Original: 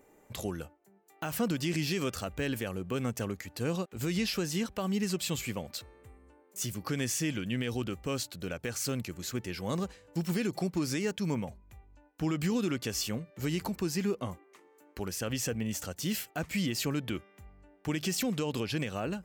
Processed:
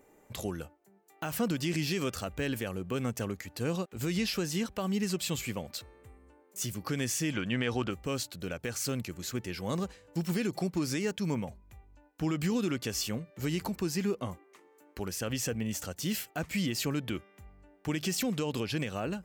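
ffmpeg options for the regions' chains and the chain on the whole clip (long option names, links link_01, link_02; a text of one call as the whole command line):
ffmpeg -i in.wav -filter_complex "[0:a]asettb=1/sr,asplit=3[link_01][link_02][link_03];[link_01]atrim=end=7.334[link_04];[link_02]atrim=start=7.33:end=7.91,asetpts=PTS-STARTPTS,afade=type=in:duration=0.004:curve=qsin,afade=type=out:start_time=0.576:duration=0.004:curve=qsin,lowpass=7700,equalizer=frequency=1100:width_type=o:width=2.1:gain=8.5[link_05];[link_03]atrim=start=7.906[link_06];[link_04][link_05]acrossfade=duration=0.004:curve1=hsin:curve2=qsin[link_07];[link_07][link_06]acrossfade=duration=0.004:curve1=qsin:curve2=hsin" out.wav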